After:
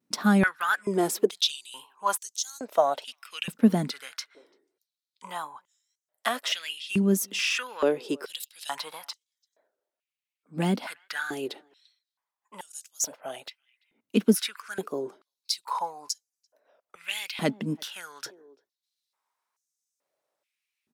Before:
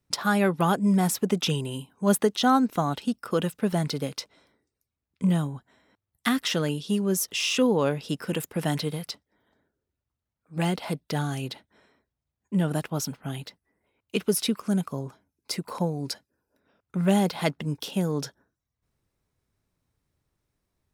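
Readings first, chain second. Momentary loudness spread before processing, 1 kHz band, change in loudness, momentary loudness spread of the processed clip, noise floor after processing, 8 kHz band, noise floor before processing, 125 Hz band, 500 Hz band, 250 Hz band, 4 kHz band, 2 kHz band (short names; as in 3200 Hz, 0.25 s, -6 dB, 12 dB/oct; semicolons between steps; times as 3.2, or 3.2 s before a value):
13 LU, -1.5 dB, -1.5 dB, 17 LU, under -85 dBFS, 0.0 dB, under -85 dBFS, -7.5 dB, -2.0 dB, -3.0 dB, 0.0 dB, +2.0 dB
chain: vibrato 1.7 Hz 79 cents; speakerphone echo 0.34 s, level -28 dB; stepped high-pass 2.3 Hz 230–6400 Hz; gain -2.5 dB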